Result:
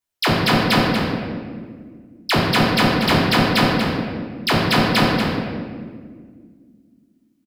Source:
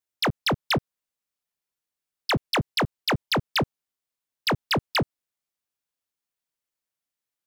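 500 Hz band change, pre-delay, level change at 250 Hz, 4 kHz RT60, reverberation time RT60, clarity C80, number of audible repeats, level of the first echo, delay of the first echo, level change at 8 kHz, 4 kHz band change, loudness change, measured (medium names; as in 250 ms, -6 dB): +9.0 dB, 3 ms, +12.5 dB, 1.1 s, 1.8 s, 0.5 dB, 1, -7.0 dB, 236 ms, +6.5 dB, +8.0 dB, +8.0 dB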